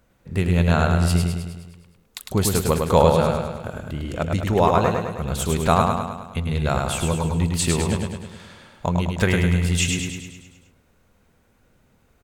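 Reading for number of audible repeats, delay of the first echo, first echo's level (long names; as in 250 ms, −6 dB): 7, 104 ms, −4.0 dB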